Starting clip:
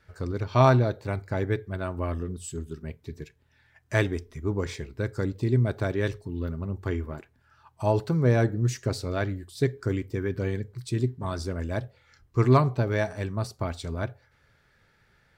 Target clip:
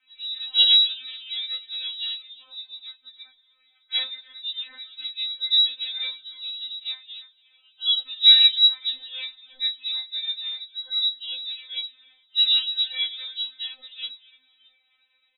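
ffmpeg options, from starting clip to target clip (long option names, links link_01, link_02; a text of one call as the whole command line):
ffmpeg -i in.wav -filter_complex "[0:a]lowpass=frequency=3400:width_type=q:width=0.5098,lowpass=frequency=3400:width_type=q:width=0.6013,lowpass=frequency=3400:width_type=q:width=0.9,lowpass=frequency=3400:width_type=q:width=2.563,afreqshift=-4000,asplit=4[link_01][link_02][link_03][link_04];[link_02]adelay=300,afreqshift=-120,volume=-18dB[link_05];[link_03]adelay=600,afreqshift=-240,volume=-26.2dB[link_06];[link_04]adelay=900,afreqshift=-360,volume=-34.4dB[link_07];[link_01][link_05][link_06][link_07]amix=inputs=4:normalize=0,flanger=delay=20:depth=5.1:speed=0.64,asplit=3[link_08][link_09][link_10];[link_08]afade=type=out:start_time=8.25:duration=0.02[link_11];[link_09]equalizer=frequency=2200:width_type=o:width=3:gain=9,afade=type=in:start_time=8.25:duration=0.02,afade=type=out:start_time=8.65:duration=0.02[link_12];[link_10]afade=type=in:start_time=8.65:duration=0.02[link_13];[link_11][link_12][link_13]amix=inputs=3:normalize=0,afftfilt=real='re*3.46*eq(mod(b,12),0)':imag='im*3.46*eq(mod(b,12),0)':win_size=2048:overlap=0.75" out.wav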